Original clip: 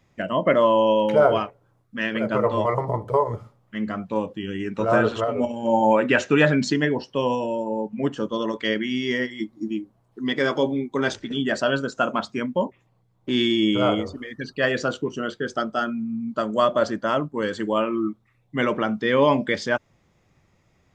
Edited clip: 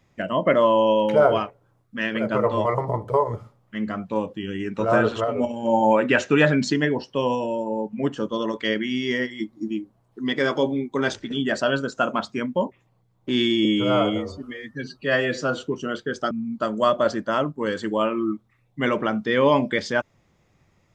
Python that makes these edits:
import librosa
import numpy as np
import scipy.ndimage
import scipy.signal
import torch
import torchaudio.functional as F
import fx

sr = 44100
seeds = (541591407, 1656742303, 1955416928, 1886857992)

y = fx.edit(x, sr, fx.stretch_span(start_s=13.65, length_s=1.32, factor=1.5),
    fx.cut(start_s=15.65, length_s=0.42), tone=tone)